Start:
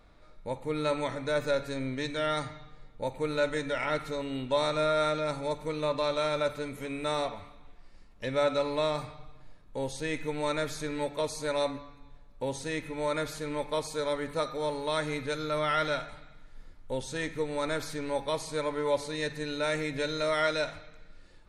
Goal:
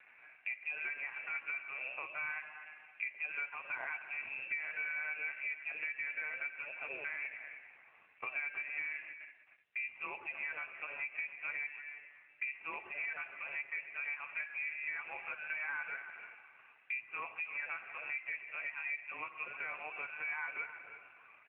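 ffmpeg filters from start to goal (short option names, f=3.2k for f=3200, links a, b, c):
-filter_complex "[0:a]asettb=1/sr,asplit=3[a][b][c];[a]atrim=end=8.384[d];[b]atrim=start=8.38:end=10.7,asetpts=PTS-STARTPTS,afade=t=in:d=0.004:c=qsin,afade=t=out:st=2.316:d=0.004:c=qsin,agate=range=-18dB:threshold=-43dB:ratio=16:detection=peak[e];[c]atrim=start=10.696[f];[d][e]acrossfade=d=0.004:c1=hsin:c2=qsin[g];[g][f]acrossfade=d=0.004:c1=qsin:c2=hsin,highpass=320,acompressor=threshold=-43dB:ratio=6,asplit=2[h][i];[i]adelay=314.9,volume=-12dB,highshelf=f=4k:g=-7.08[j];[h][j]amix=inputs=2:normalize=0,lowpass=f=2.5k:t=q:w=0.5098,lowpass=f=2.5k:t=q:w=0.6013,lowpass=f=2.5k:t=q:w=0.9,lowpass=f=2.5k:t=q:w=2.563,afreqshift=-2900,volume=6.5dB" -ar 8000 -c:a libopencore_amrnb -b:a 7400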